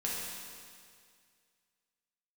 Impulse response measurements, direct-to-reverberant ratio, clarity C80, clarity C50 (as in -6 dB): -5.5 dB, 0.5 dB, -1.5 dB